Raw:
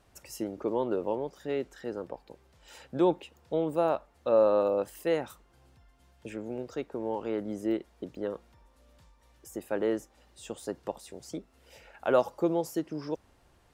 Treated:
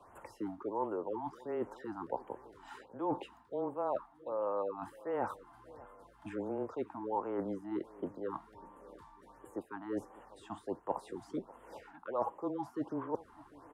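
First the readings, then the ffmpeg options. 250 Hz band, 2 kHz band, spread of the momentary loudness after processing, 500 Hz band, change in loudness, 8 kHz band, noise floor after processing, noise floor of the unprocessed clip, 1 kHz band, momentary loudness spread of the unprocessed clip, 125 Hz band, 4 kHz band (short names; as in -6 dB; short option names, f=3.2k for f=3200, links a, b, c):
-7.0 dB, -9.0 dB, 18 LU, -9.5 dB, -8.5 dB, under -15 dB, -62 dBFS, -64 dBFS, -2.5 dB, 16 LU, -8.5 dB, under -10 dB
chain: -filter_complex "[0:a]acrossover=split=4200[a][b];[b]acompressor=threshold=-57dB:ratio=4:attack=1:release=60[c];[a][c]amix=inputs=2:normalize=0,acrossover=split=250 2900:gain=0.224 1 0.158[d][e][f];[d][e][f]amix=inputs=3:normalize=0,afreqshift=-14,areverse,acompressor=threshold=-39dB:ratio=20,areverse,equalizer=f=100:t=o:w=0.67:g=7,equalizer=f=1k:t=o:w=0.67:g=11,equalizer=f=2.5k:t=o:w=0.67:g=-8,equalizer=f=10k:t=o:w=0.67:g=9,asplit=2[g][h];[h]aecho=0:1:597|1194|1791|2388:0.1|0.054|0.0292|0.0157[i];[g][i]amix=inputs=2:normalize=0,afftfilt=real='re*(1-between(b*sr/1024,440*pow(5000/440,0.5+0.5*sin(2*PI*1.4*pts/sr))/1.41,440*pow(5000/440,0.5+0.5*sin(2*PI*1.4*pts/sr))*1.41))':imag='im*(1-between(b*sr/1024,440*pow(5000/440,0.5+0.5*sin(2*PI*1.4*pts/sr))/1.41,440*pow(5000/440,0.5+0.5*sin(2*PI*1.4*pts/sr))*1.41))':win_size=1024:overlap=0.75,volume=5dB"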